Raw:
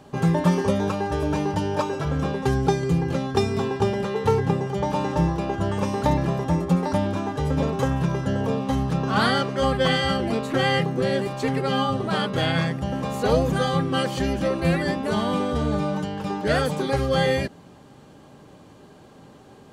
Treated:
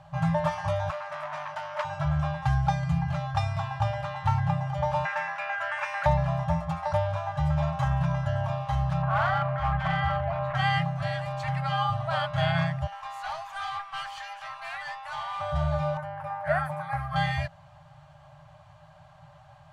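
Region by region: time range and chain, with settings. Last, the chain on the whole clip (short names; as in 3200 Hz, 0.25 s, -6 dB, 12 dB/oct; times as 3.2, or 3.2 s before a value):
0.9–1.85 HPF 240 Hz 24 dB/oct + notch 790 Hz, Q 10 + core saturation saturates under 2400 Hz
5.05–6.06 HPF 790 Hz + band shelf 1900 Hz +12.5 dB 1.1 oct
9.02–10.55 LPF 1800 Hz + hard clip -18 dBFS + fast leveller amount 50%
12.87–15.41 steep high-pass 760 Hz 48 dB/oct + tube stage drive 26 dB, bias 0.5 + doubler 21 ms -13 dB
15.97–17.16 HPF 240 Hz 6 dB/oct + band shelf 4600 Hz -15 dB
whole clip: FFT band-reject 170–570 Hz; LPF 1800 Hz 6 dB/oct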